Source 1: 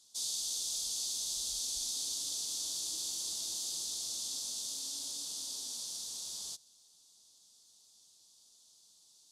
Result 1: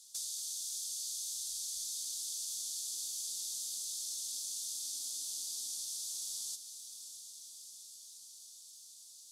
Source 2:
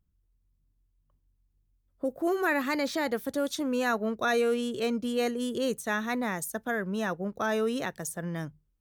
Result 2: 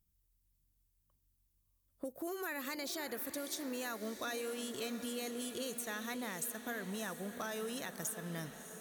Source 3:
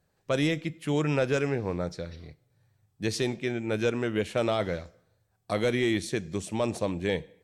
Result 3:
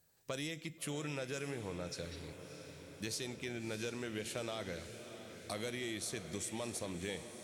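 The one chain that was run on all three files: pre-emphasis filter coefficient 0.8; in parallel at -2.5 dB: peak limiter -34.5 dBFS; on the sum: compression 4:1, threshold -42 dBFS; one-sided clip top -35 dBFS, bottom -33 dBFS; echo that smears into a reverb 655 ms, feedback 69%, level -11 dB; trim +3 dB

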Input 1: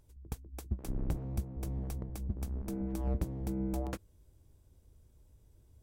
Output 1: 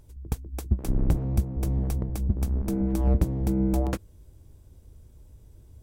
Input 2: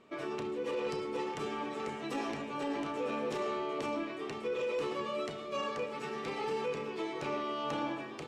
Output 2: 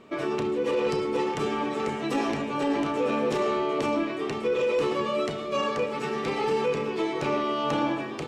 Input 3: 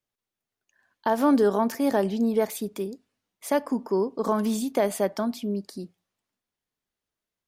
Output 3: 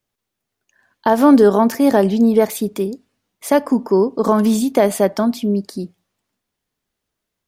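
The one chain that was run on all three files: bass shelf 420 Hz +3.5 dB; trim +8 dB

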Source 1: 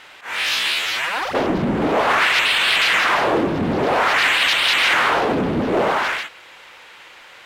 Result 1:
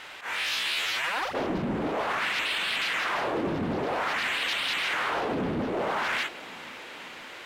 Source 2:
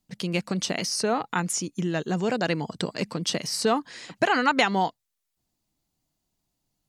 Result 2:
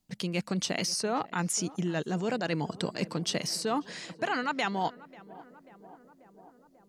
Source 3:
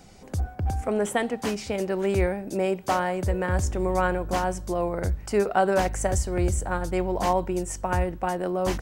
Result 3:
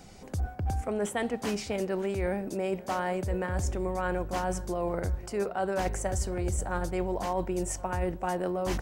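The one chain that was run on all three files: reverse; compression 12:1, threshold -26 dBFS; reverse; tape echo 539 ms, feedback 82%, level -18 dB, low-pass 1.3 kHz

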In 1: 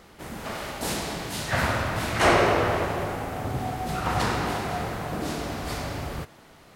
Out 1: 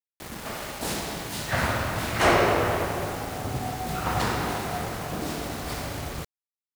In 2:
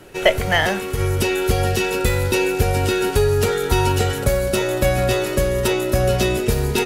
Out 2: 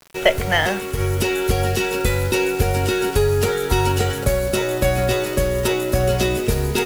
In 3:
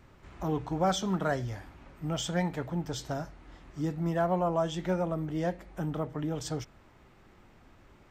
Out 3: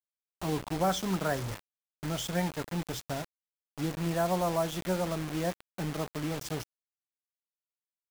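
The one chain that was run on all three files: in parallel at -11.5 dB: crossover distortion -36 dBFS; on the sum: bit crusher 6-bit; trim -2.5 dB

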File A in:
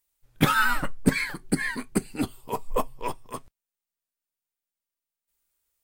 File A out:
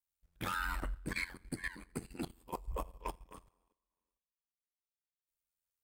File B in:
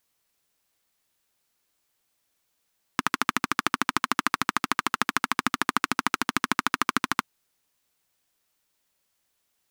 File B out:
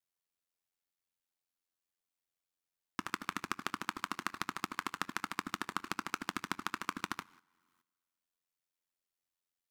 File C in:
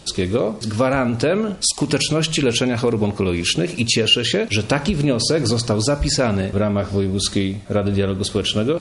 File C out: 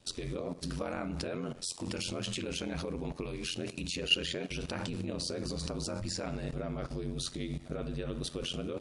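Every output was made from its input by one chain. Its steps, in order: two-slope reverb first 0.36 s, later 1.7 s, from -16 dB, DRR 14 dB; level held to a coarse grid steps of 14 dB; ring modulator 44 Hz; trim -5.5 dB

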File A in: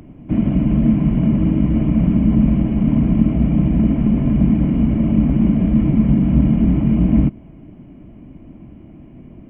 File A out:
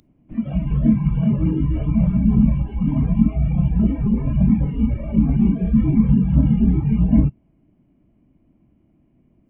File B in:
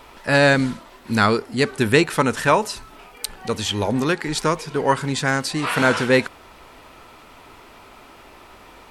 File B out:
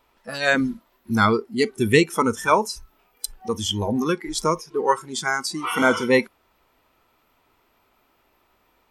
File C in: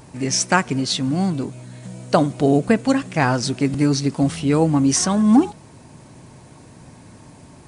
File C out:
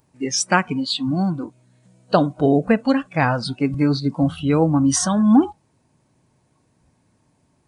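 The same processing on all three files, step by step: spectral noise reduction 19 dB

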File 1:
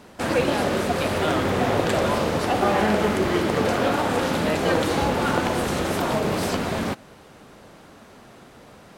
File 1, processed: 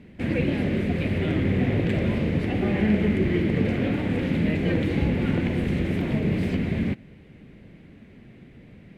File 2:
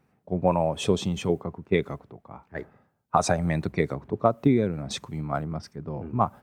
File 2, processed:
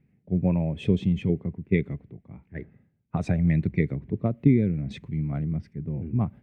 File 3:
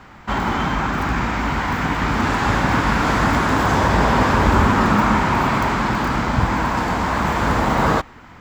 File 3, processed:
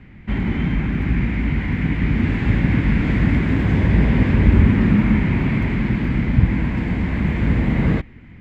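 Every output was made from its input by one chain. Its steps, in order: FFT filter 180 Hz 0 dB, 360 Hz -7 dB, 860 Hz -22 dB, 1.3 kHz -23 dB, 2.1 kHz -5 dB, 5.7 kHz -26 dB; trim +5 dB

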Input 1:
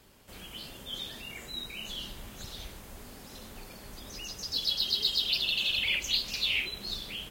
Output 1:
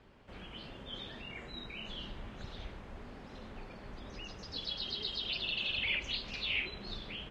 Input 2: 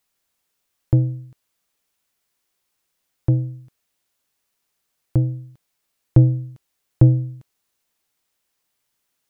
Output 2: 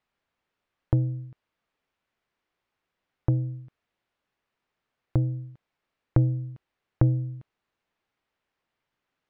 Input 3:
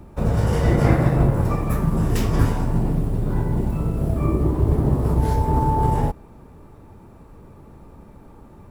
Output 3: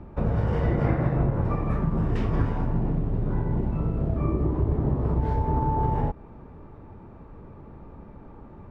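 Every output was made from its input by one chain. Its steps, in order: compression 2:1, threshold -24 dBFS; low-pass 2.4 kHz 12 dB/octave

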